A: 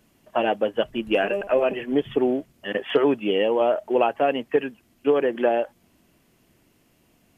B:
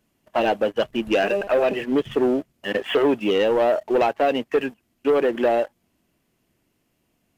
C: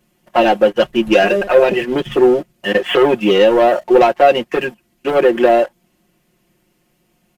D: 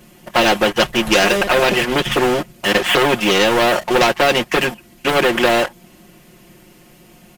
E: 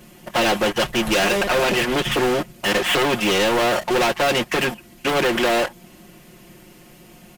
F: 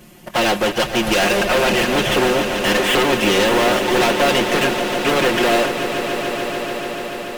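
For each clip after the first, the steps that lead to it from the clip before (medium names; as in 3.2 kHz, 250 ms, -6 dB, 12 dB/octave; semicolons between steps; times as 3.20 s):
waveshaping leveller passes 2; trim -4 dB
comb 5.6 ms, depth 85%; trim +6 dB
spectrum-flattening compressor 2:1
saturation -14.5 dBFS, distortion -11 dB
echo with a slow build-up 145 ms, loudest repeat 5, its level -12.5 dB; trim +1.5 dB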